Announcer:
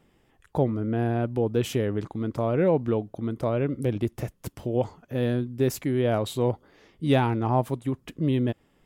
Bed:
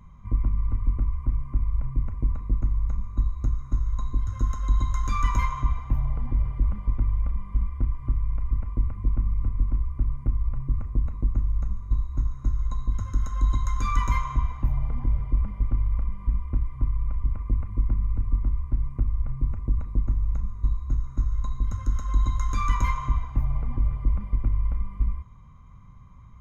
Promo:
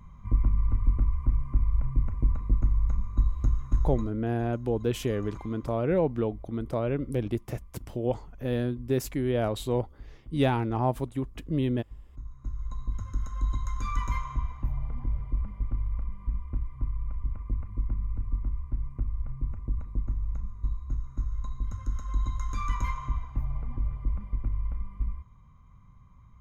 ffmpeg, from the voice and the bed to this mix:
-filter_complex "[0:a]adelay=3300,volume=-3dB[a];[1:a]volume=15.5dB,afade=t=out:st=3.86:d=0.27:silence=0.0841395,afade=t=in:st=12.07:d=0.79:silence=0.16788[b];[a][b]amix=inputs=2:normalize=0"

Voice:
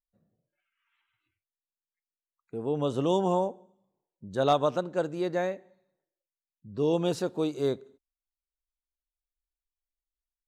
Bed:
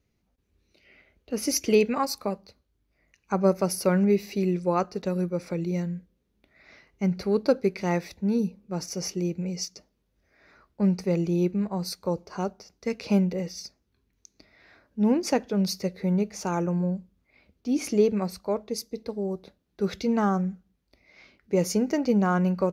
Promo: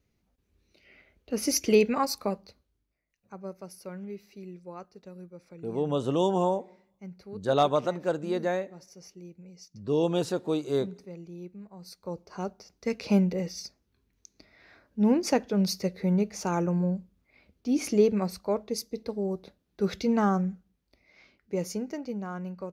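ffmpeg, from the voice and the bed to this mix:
-filter_complex "[0:a]adelay=3100,volume=0.5dB[a];[1:a]volume=17dB,afade=t=out:st=2.61:d=0.41:silence=0.133352,afade=t=in:st=11.76:d=1.16:silence=0.133352,afade=t=out:st=20.28:d=1.9:silence=0.237137[b];[a][b]amix=inputs=2:normalize=0"

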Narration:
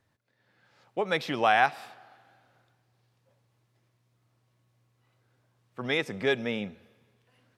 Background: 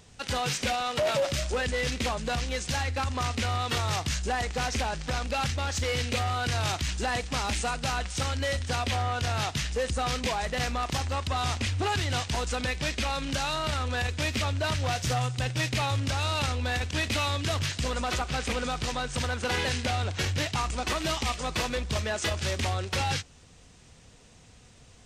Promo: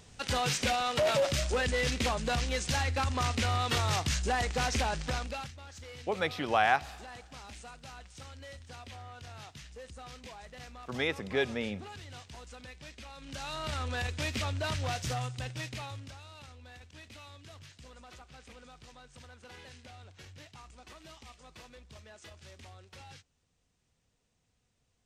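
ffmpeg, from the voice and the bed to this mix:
-filter_complex "[0:a]adelay=5100,volume=-3.5dB[a];[1:a]volume=12.5dB,afade=t=out:st=5:d=0.51:silence=0.133352,afade=t=in:st=13.16:d=0.66:silence=0.211349,afade=t=out:st=14.88:d=1.35:silence=0.133352[b];[a][b]amix=inputs=2:normalize=0"

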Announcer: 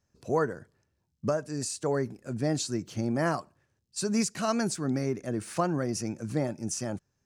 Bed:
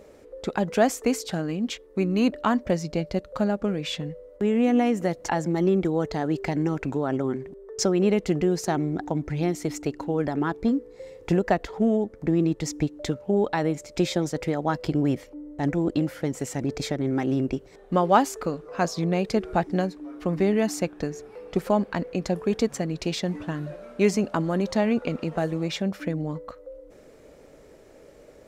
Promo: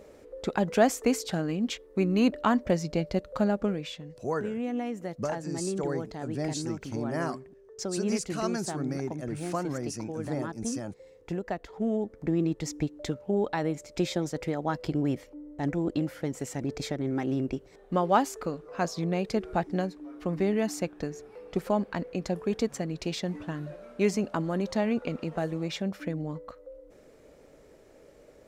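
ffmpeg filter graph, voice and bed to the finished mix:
-filter_complex "[0:a]adelay=3950,volume=-4dB[a];[1:a]volume=5dB,afade=t=out:st=3.64:d=0.31:silence=0.334965,afade=t=in:st=11.64:d=0.42:silence=0.473151[b];[a][b]amix=inputs=2:normalize=0"

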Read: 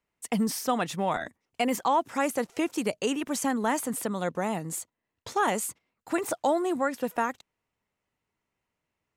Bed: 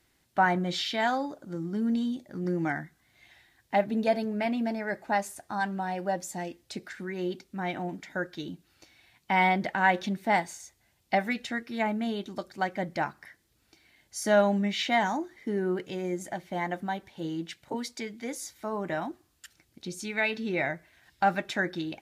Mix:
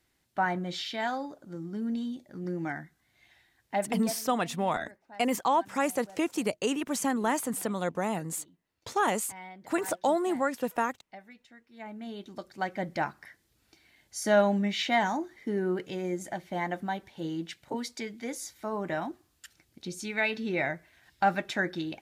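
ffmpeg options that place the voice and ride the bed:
-filter_complex "[0:a]adelay=3600,volume=-1dB[a];[1:a]volume=17dB,afade=t=out:st=3.96:d=0.21:silence=0.133352,afade=t=in:st=11.69:d=1.25:silence=0.0841395[b];[a][b]amix=inputs=2:normalize=0"

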